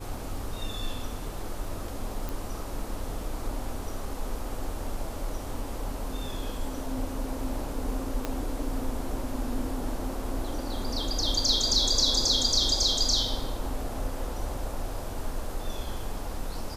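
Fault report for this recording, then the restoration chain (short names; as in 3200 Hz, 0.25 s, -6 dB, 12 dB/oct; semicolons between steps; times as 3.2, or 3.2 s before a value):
2.29 pop
8.25 pop -15 dBFS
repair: de-click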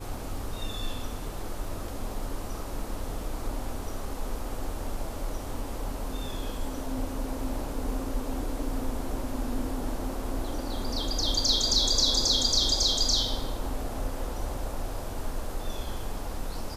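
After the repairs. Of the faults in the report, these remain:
8.25 pop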